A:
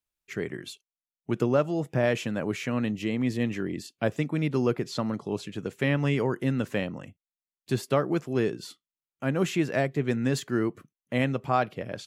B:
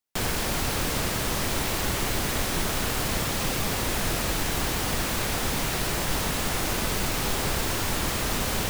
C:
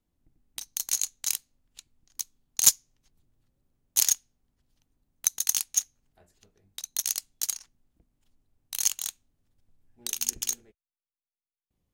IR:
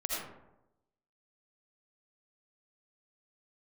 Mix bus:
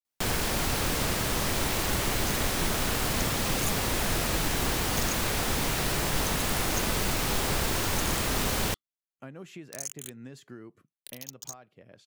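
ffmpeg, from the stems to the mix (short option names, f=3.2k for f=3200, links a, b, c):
-filter_complex "[0:a]acompressor=threshold=-31dB:ratio=12,volume=-19.5dB[a];[1:a]adelay=50,volume=-1dB[b];[2:a]aeval=exprs='val(0)*gte(abs(val(0)),0.0251)':c=same,asplit=2[c][d];[d]afreqshift=1.1[e];[c][e]amix=inputs=2:normalize=1,adelay=1000,volume=-16dB[f];[a][f]amix=inputs=2:normalize=0,dynaudnorm=f=460:g=11:m=11dB,alimiter=limit=-21.5dB:level=0:latency=1:release=78,volume=0dB[g];[b][g]amix=inputs=2:normalize=0"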